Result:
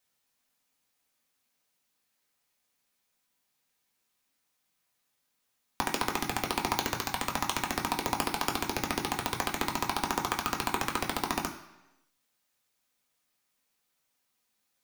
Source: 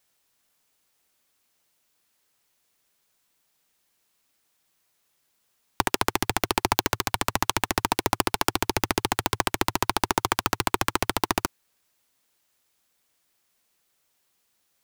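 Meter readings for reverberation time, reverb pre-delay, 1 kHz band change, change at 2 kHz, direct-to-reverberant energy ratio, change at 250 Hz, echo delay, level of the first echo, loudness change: 1.0 s, 3 ms, −5.0 dB, −5.5 dB, 1.0 dB, −5.0 dB, no echo audible, no echo audible, −5.5 dB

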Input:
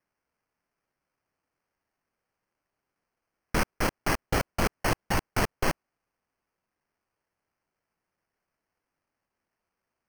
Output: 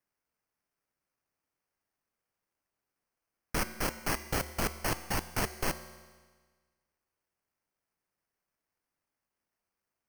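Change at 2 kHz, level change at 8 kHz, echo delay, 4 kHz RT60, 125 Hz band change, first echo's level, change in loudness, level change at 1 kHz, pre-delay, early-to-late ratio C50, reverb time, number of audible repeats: −5.5 dB, −0.5 dB, no echo audible, 1.5 s, −6.0 dB, no echo audible, −4.5 dB, −6.0 dB, 5 ms, 13.5 dB, 1.5 s, no echo audible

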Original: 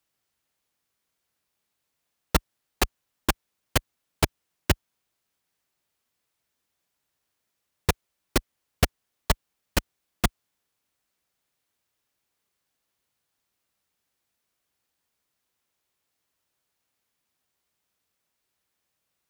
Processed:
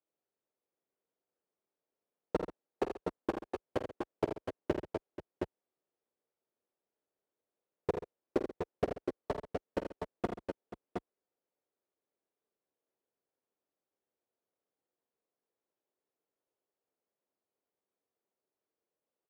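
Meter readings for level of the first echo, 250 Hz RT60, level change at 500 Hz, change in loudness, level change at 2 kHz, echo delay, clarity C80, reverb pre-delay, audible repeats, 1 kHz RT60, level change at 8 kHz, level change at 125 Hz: −11.0 dB, no reverb audible, −1.0 dB, −10.0 dB, −16.5 dB, 49 ms, no reverb audible, no reverb audible, 5, no reverb audible, below −25 dB, −16.0 dB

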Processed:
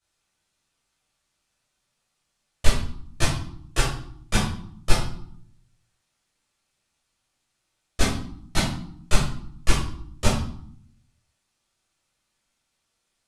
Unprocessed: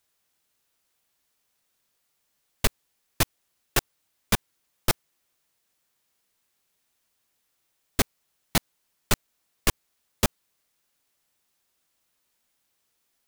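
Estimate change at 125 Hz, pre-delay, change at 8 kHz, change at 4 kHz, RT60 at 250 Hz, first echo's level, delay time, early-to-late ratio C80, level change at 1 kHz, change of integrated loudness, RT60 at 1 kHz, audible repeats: +7.0 dB, 12 ms, −0.5 dB, +1.5 dB, 0.95 s, no echo audible, no echo audible, 8.0 dB, +2.5 dB, +1.0 dB, 0.65 s, no echo audible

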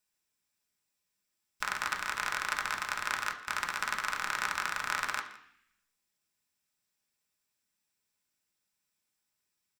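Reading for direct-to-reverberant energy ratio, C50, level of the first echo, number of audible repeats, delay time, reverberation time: 2.0 dB, 10.5 dB, −19.5 dB, 1, 166 ms, 0.65 s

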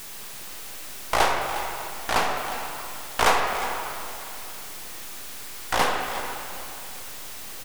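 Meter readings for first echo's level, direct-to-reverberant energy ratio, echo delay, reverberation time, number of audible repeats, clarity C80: −13.5 dB, 1.5 dB, 358 ms, 2.8 s, 1, 3.5 dB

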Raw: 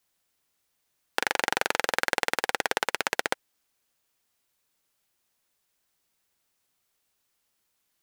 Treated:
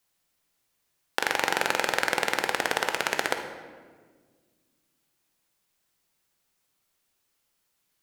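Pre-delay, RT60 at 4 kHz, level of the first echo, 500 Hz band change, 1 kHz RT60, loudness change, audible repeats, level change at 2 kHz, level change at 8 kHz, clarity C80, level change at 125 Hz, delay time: 6 ms, 1.0 s, no echo audible, +1.5 dB, 1.4 s, +1.0 dB, no echo audible, +1.0 dB, +0.5 dB, 9.0 dB, +3.0 dB, no echo audible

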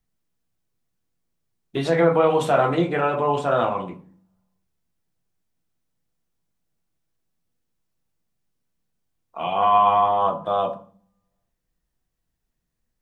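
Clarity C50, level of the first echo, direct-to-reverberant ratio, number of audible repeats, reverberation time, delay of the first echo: 13.5 dB, no echo audible, 7.0 dB, no echo audible, 0.45 s, no echo audible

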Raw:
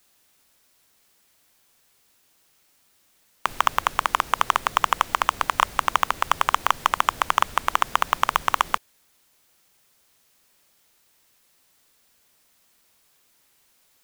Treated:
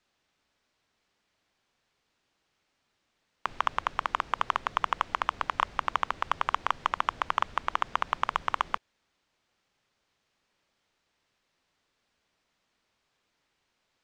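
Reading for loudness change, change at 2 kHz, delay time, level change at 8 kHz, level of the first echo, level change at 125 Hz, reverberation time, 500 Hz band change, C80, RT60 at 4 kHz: −7.5 dB, −7.5 dB, no echo audible, below −15 dB, no echo audible, −6.5 dB, no reverb audible, −7.0 dB, no reverb audible, no reverb audible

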